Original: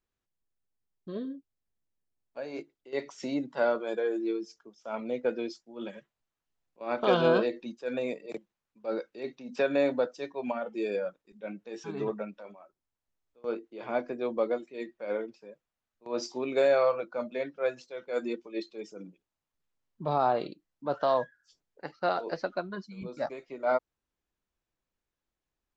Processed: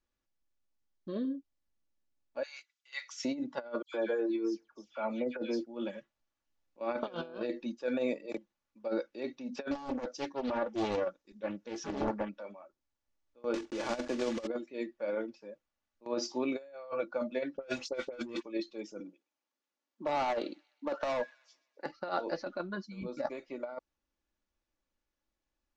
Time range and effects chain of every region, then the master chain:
2.43–3.25 HPF 1300 Hz 24 dB/oct + high shelf 4400 Hz +8 dB
3.82–5.66 high shelf 5600 Hz -5.5 dB + dispersion lows, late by 0.12 s, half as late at 2700 Hz
9.71–12.29 bell 5900 Hz +6.5 dB 0.79 oct + Doppler distortion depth 0.9 ms
13.54–14.48 block floating point 3-bit + upward compressor, threshold -29 dBFS
17.57–18.43 sample leveller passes 3 + notch 1700 Hz, Q 14 + dispersion highs, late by 53 ms, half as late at 2200 Hz
19–21.86 HPF 240 Hz 24 dB/oct + hard clip -26.5 dBFS + thin delay 0.127 s, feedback 50%, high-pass 2100 Hz, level -22.5 dB
whole clip: Chebyshev low-pass 6500 Hz, order 3; comb 3.5 ms, depth 45%; negative-ratio compressor -30 dBFS, ratio -0.5; gain -3 dB

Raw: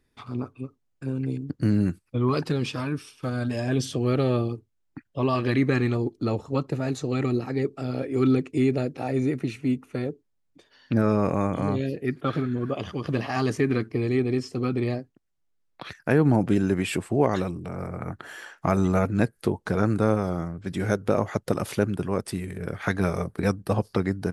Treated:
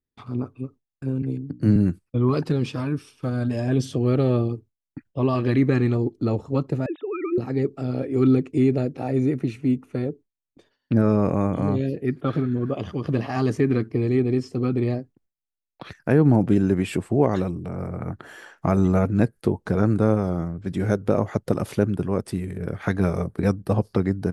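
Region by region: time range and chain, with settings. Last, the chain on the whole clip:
1.22–1.76 notches 60/120/180/240/300 Hz + three-band expander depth 40%
6.86–7.38 sine-wave speech + HPF 380 Hz
whole clip: gate with hold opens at -45 dBFS; tilt shelf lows +4 dB, about 790 Hz

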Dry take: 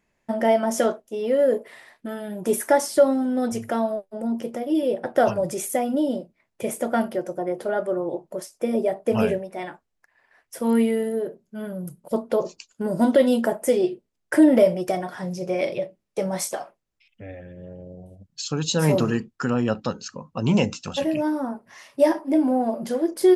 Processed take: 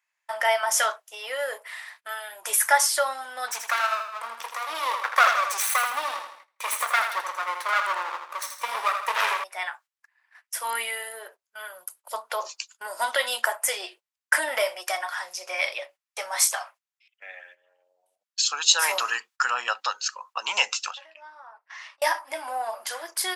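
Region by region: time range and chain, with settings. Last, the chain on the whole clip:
3.48–9.44 minimum comb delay 0.49 ms + bell 10000 Hz -3 dB 0.75 oct + feedback echo 81 ms, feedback 45%, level -7 dB
20.91–22.02 HPF 340 Hz + compressor 5:1, threshold -42 dBFS + air absorption 140 m
whole clip: HPF 1000 Hz 24 dB/oct; gate -58 dBFS, range -13 dB; gain +8.5 dB

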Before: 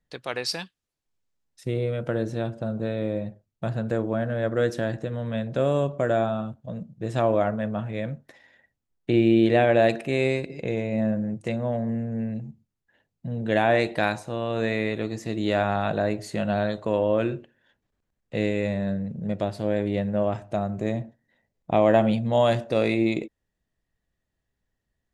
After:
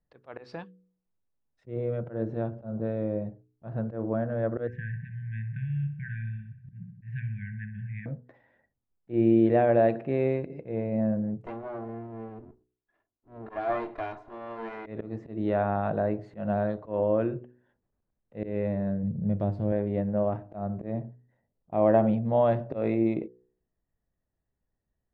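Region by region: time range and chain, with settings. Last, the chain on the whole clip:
4.67–8.06 brick-wall FIR band-stop 200–1500 Hz + resonant high shelf 3100 Hz -10.5 dB, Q 3 + darkening echo 62 ms, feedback 67%, low-pass 3600 Hz, level -10.5 dB
11.46–14.86 minimum comb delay 2.9 ms + low shelf 300 Hz -9 dB
19.03–19.72 tone controls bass +9 dB, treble +11 dB + resonator 100 Hz, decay 0.33 s, mix 40%
whole clip: LPF 1200 Hz 12 dB/oct; auto swell 0.135 s; de-hum 61.47 Hz, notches 8; gain -2 dB

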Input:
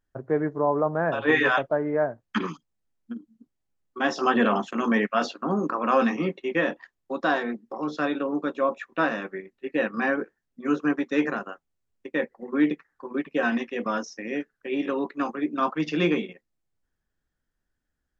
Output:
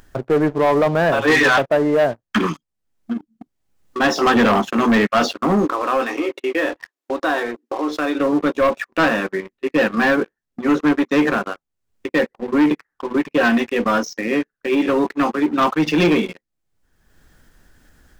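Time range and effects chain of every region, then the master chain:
5.65–8.19 compressor 2:1, threshold -31 dBFS + brick-wall FIR high-pass 250 Hz
whole clip: sample leveller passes 3; upward compressor, threshold -24 dBFS

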